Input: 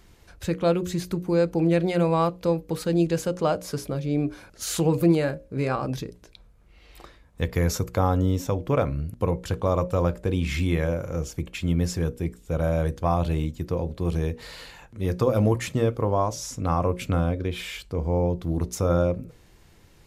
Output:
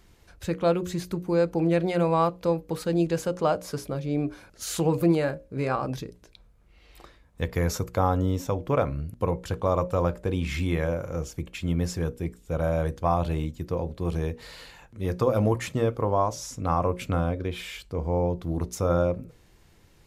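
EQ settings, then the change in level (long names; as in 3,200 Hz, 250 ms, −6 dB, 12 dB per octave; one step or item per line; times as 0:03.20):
dynamic equaliser 950 Hz, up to +4 dB, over −36 dBFS, Q 0.71
−3.0 dB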